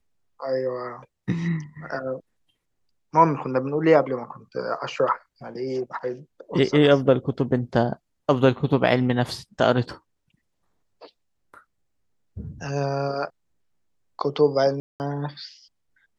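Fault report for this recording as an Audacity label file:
14.800000	15.000000	drop-out 199 ms

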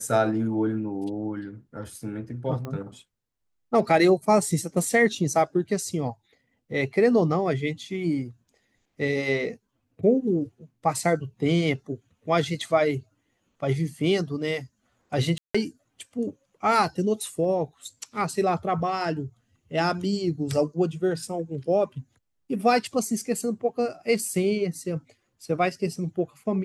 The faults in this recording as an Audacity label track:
2.650000	2.650000	click −21 dBFS
15.380000	15.540000	drop-out 165 ms

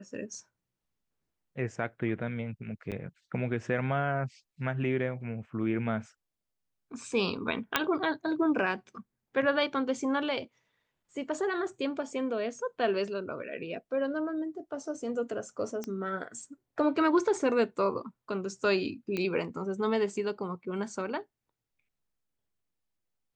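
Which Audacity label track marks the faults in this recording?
2.910000	2.920000	drop-out 7.8 ms
7.760000	7.760000	click −8 dBFS
15.840000	15.840000	click −22 dBFS
19.170000	19.170000	click −19 dBFS

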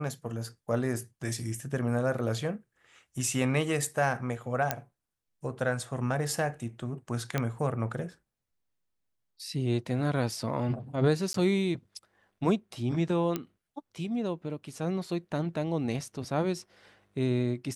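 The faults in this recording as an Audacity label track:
4.710000	4.710000	click −10 dBFS
7.380000	7.380000	click −14 dBFS
11.330000	11.340000	drop-out 13 ms
13.360000	13.360000	click −16 dBFS

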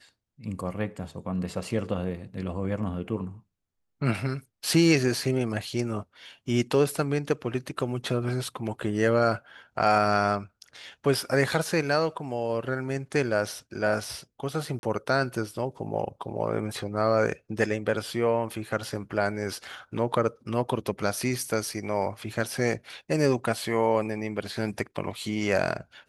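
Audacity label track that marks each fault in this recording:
14.790000	14.830000	drop-out 41 ms

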